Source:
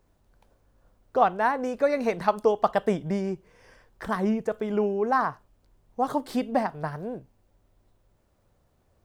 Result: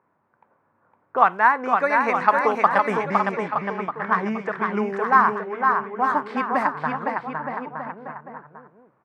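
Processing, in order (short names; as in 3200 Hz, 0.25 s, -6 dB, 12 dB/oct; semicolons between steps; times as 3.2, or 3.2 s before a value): HPF 130 Hz 24 dB/oct; on a send: bouncing-ball echo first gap 0.51 s, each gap 0.8×, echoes 5; on the sum: low-pass opened by the level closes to 810 Hz, open at -18 dBFS; band shelf 1500 Hz +12 dB; mismatched tape noise reduction encoder only; gain -2 dB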